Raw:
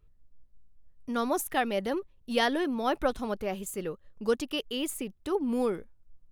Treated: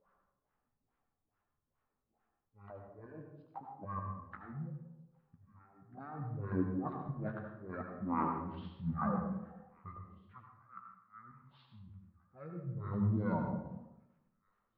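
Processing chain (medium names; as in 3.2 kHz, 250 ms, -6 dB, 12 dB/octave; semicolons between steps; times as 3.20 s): frequency weighting ITU-R 468; compressor with a negative ratio -34 dBFS, ratio -0.5; slow attack 362 ms; LFO low-pass sine 5.5 Hz 300–3200 Hz; flange 1.8 Hz, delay 3.8 ms, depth 5.4 ms, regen +36%; feedback echo behind a high-pass 680 ms, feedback 38%, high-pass 4.7 kHz, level -21 dB; reverberation RT60 0.40 s, pre-delay 31 ms, DRR 2.5 dB; speed mistake 78 rpm record played at 33 rpm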